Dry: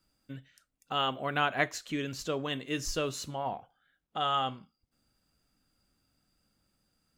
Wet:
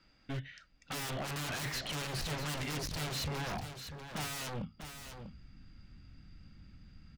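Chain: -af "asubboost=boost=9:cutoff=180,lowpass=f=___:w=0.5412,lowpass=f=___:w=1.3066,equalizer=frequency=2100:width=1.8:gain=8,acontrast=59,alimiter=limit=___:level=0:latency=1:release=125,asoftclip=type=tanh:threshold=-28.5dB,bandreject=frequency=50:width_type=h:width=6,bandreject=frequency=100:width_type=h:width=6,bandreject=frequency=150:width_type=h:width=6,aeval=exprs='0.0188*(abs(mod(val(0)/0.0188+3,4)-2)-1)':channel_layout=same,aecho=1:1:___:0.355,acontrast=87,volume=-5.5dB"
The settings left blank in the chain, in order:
5300, 5300, -12.5dB, 645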